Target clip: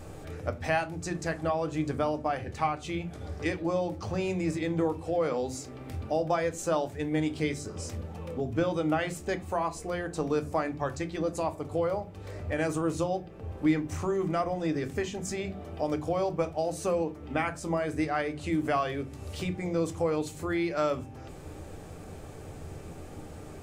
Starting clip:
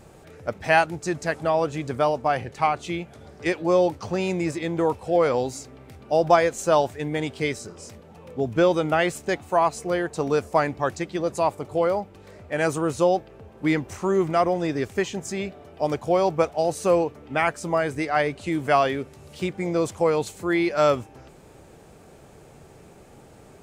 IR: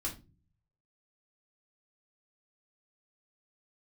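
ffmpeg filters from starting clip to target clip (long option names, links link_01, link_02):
-filter_complex "[0:a]acompressor=threshold=-38dB:ratio=2,asplit=2[link_01][link_02];[1:a]atrim=start_sample=2205,lowshelf=frequency=270:gain=7.5[link_03];[link_02][link_03]afir=irnorm=-1:irlink=0,volume=-6.5dB[link_04];[link_01][link_04]amix=inputs=2:normalize=0"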